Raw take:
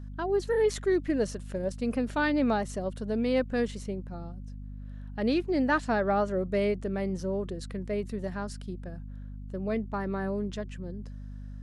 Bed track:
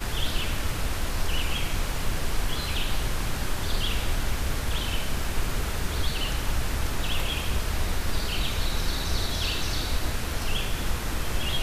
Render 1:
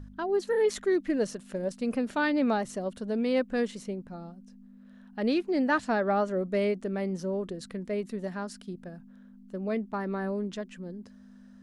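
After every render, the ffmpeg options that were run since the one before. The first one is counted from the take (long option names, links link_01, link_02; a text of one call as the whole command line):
ffmpeg -i in.wav -af "bandreject=frequency=50:width_type=h:width=4,bandreject=frequency=100:width_type=h:width=4,bandreject=frequency=150:width_type=h:width=4" out.wav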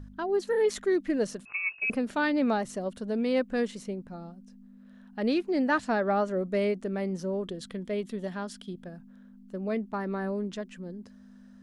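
ffmpeg -i in.wav -filter_complex "[0:a]asettb=1/sr,asplit=3[link_01][link_02][link_03];[link_01]atrim=end=1.454[link_04];[link_02]atrim=start=1.45:end=1.9,asetpts=PTS-STARTPTS,afade=type=in:duration=0.004:curve=qsin,afade=type=out:start_time=0.446:duration=0.004:curve=qsin,lowpass=frequency=2400:width_type=q:width=0.5098,lowpass=frequency=2400:width_type=q:width=0.6013,lowpass=frequency=2400:width_type=q:width=0.9,lowpass=frequency=2400:width_type=q:width=2.563,afreqshift=-2800[link_05];[link_03]atrim=start=1.896[link_06];[link_04][link_05]acrossfade=duration=0.004:curve1=hsin:curve2=qsin[link_07];[link_07][link_06]acrossfade=duration=0.004:curve1=qsin:curve2=hsin,asettb=1/sr,asplit=3[link_08][link_09][link_10];[link_08]atrim=end=7.484[link_11];[link_09]atrim=start=7.48:end=8.86,asetpts=PTS-STARTPTS,afade=type=in:duration=0.004:curve=qsin,afade=type=out:start_time=1.376:duration=0.004:curve=qsin,equalizer=frequency=3300:width_type=o:width=0.21:gain=12.5[link_12];[link_10]atrim=start=8.856[link_13];[link_11][link_12]acrossfade=duration=0.004:curve1=hsin:curve2=qsin[link_14];[link_14][link_13]acrossfade=duration=0.004:curve1=qsin:curve2=hsin" out.wav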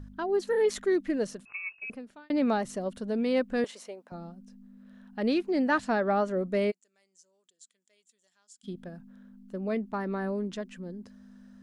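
ffmpeg -i in.wav -filter_complex "[0:a]asettb=1/sr,asplit=3[link_01][link_02][link_03];[link_01]atrim=end=3.644[link_04];[link_02]atrim=start=3.64:end=4.12,asetpts=PTS-STARTPTS,afade=type=in:duration=0.004:curve=qsin,afade=type=out:start_time=0.476:duration=0.004:curve=qsin,highpass=frequency=670:width_type=q:width=1.6[link_05];[link_03]atrim=start=4.116[link_06];[link_04][link_05]acrossfade=duration=0.004:curve1=hsin:curve2=qsin[link_07];[link_07][link_06]acrossfade=duration=0.004:curve1=qsin:curve2=hsin,asplit=3[link_08][link_09][link_10];[link_08]afade=type=out:start_time=6.7:duration=0.02[link_11];[link_09]bandpass=frequency=7300:width_type=q:width=6.1,afade=type=in:start_time=6.7:duration=0.02,afade=type=out:start_time=8.63:duration=0.02[link_12];[link_10]afade=type=in:start_time=8.63:duration=0.02[link_13];[link_11][link_12][link_13]amix=inputs=3:normalize=0,asplit=2[link_14][link_15];[link_14]atrim=end=2.3,asetpts=PTS-STARTPTS,afade=type=out:start_time=0.95:duration=1.35[link_16];[link_15]atrim=start=2.3,asetpts=PTS-STARTPTS,afade=type=in:duration=0.004:curve=hsin[link_17];[link_16][link_17]concat=n=2:v=0:a=1" out.wav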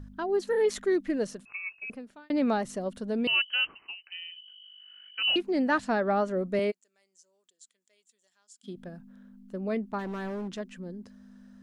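ffmpeg -i in.wav -filter_complex "[0:a]asettb=1/sr,asplit=3[link_01][link_02][link_03];[link_01]atrim=end=3.274[link_04];[link_02]atrim=start=3.27:end=5.36,asetpts=PTS-STARTPTS,afade=type=in:duration=0.004:curve=qsin,afade=type=out:start_time=2.086:duration=0.004:curve=qsin,lowpass=frequency=2700:width_type=q:width=0.5098,lowpass=frequency=2700:width_type=q:width=0.6013,lowpass=frequency=2700:width_type=q:width=0.9,lowpass=frequency=2700:width_type=q:width=2.563,afreqshift=-3200[link_05];[link_03]atrim=start=5.356[link_06];[link_04][link_05]acrossfade=duration=0.004:curve1=hsin:curve2=qsin[link_07];[link_07][link_06]acrossfade=duration=0.004:curve1=qsin:curve2=hsin,asettb=1/sr,asplit=3[link_08][link_09][link_10];[link_08]atrim=end=6.594[link_11];[link_09]atrim=start=6.59:end=8.76,asetpts=PTS-STARTPTS,afade=type=in:duration=0.004:curve=qsin,afade=type=out:start_time=2.166:duration=0.004:curve=qsin,highpass=200[link_12];[link_10]atrim=start=8.756[link_13];[link_11][link_12]acrossfade=duration=0.004:curve1=hsin:curve2=qsin[link_14];[link_14][link_13]acrossfade=duration=0.004:curve1=qsin:curve2=hsin,asplit=3[link_15][link_16][link_17];[link_15]afade=type=out:start_time=9.98:duration=0.02[link_18];[link_16]volume=32dB,asoftclip=hard,volume=-32dB,afade=type=in:start_time=9.98:duration=0.02,afade=type=out:start_time=10.58:duration=0.02[link_19];[link_17]afade=type=in:start_time=10.58:duration=0.02[link_20];[link_18][link_19][link_20]amix=inputs=3:normalize=0" out.wav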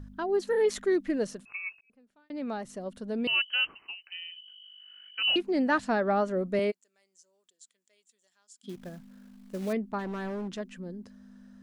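ffmpeg -i in.wav -filter_complex "[0:a]asettb=1/sr,asplit=3[link_01][link_02][link_03];[link_01]atrim=end=8.694[link_04];[link_02]atrim=start=8.69:end=9.73,asetpts=PTS-STARTPTS,afade=type=in:duration=0.004:curve=qsin,afade=type=out:start_time=1.036:duration=0.004:curve=qsin,acrusher=bits=4:mode=log:mix=0:aa=0.000001[link_05];[link_03]atrim=start=9.726[link_06];[link_04][link_05]acrossfade=duration=0.004:curve1=hsin:curve2=qsin[link_07];[link_07][link_06]acrossfade=duration=0.004:curve1=qsin:curve2=hsin,asplit=2[link_08][link_09];[link_08]atrim=end=1.81,asetpts=PTS-STARTPTS,afade=type=out:start_time=1.806:duration=0.004:curve=hsin[link_10];[link_09]atrim=start=1.81,asetpts=PTS-STARTPTS,afade=type=in:duration=1.78[link_11];[link_10][link_11]concat=n=2:v=0:a=1" out.wav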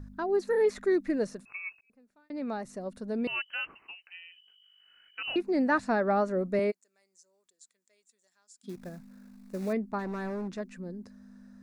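ffmpeg -i in.wav -filter_complex "[0:a]acrossover=split=3200[link_01][link_02];[link_02]acompressor=threshold=-47dB:ratio=4:attack=1:release=60[link_03];[link_01][link_03]amix=inputs=2:normalize=0,equalizer=frequency=3100:width_type=o:width=0.22:gain=-14.5" out.wav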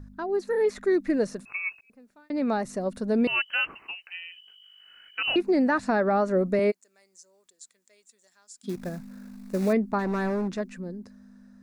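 ffmpeg -i in.wav -af "dynaudnorm=framelen=180:gausssize=13:maxgain=8.5dB,alimiter=limit=-15.5dB:level=0:latency=1:release=213" out.wav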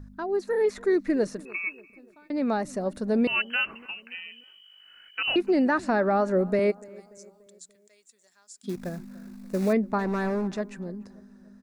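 ffmpeg -i in.wav -filter_complex "[0:a]asplit=2[link_01][link_02];[link_02]adelay=291,lowpass=frequency=1900:poles=1,volume=-22dB,asplit=2[link_03][link_04];[link_04]adelay=291,lowpass=frequency=1900:poles=1,volume=0.52,asplit=2[link_05][link_06];[link_06]adelay=291,lowpass=frequency=1900:poles=1,volume=0.52,asplit=2[link_07][link_08];[link_08]adelay=291,lowpass=frequency=1900:poles=1,volume=0.52[link_09];[link_01][link_03][link_05][link_07][link_09]amix=inputs=5:normalize=0" out.wav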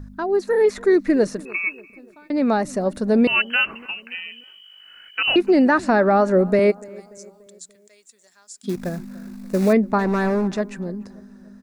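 ffmpeg -i in.wav -af "volume=7dB" out.wav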